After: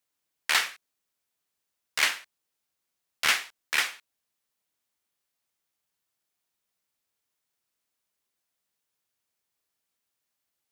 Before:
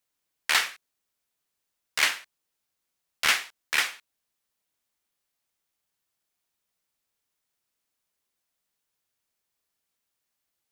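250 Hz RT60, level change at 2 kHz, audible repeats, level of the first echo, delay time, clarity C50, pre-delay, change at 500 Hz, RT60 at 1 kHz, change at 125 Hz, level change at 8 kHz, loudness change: none, -1.0 dB, none, none, none, none, none, -1.0 dB, none, n/a, -1.0 dB, -1.0 dB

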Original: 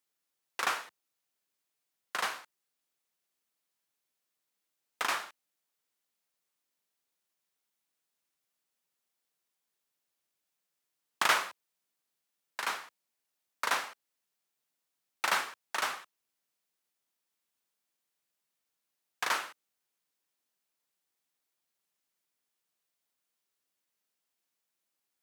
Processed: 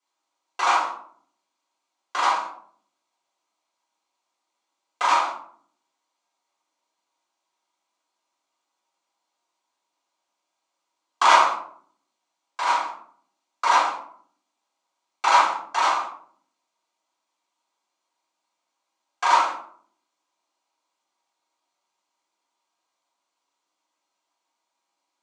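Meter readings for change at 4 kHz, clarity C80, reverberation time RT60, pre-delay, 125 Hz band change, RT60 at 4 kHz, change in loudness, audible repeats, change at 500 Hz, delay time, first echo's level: +7.0 dB, 9.0 dB, 0.60 s, 3 ms, n/a, 0.30 s, +11.0 dB, none, +12.0 dB, none, none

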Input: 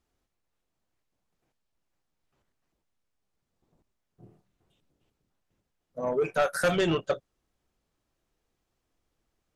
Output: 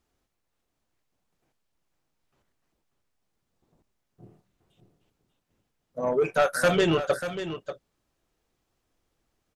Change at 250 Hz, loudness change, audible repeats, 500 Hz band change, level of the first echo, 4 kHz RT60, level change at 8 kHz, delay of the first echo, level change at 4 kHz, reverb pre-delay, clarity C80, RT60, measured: +3.0 dB, +2.5 dB, 1, +3.5 dB, -10.5 dB, none, +3.5 dB, 0.589 s, +3.5 dB, none, none, none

